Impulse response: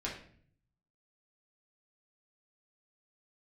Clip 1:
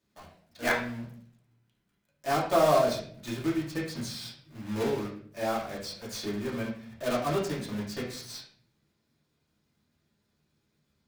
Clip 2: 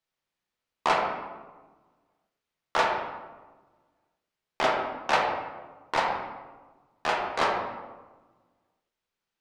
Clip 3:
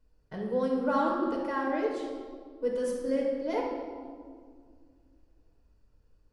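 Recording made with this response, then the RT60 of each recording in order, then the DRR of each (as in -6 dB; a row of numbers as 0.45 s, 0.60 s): 1; 0.55 s, 1.3 s, 2.0 s; -5.0 dB, -1.5 dB, -2.0 dB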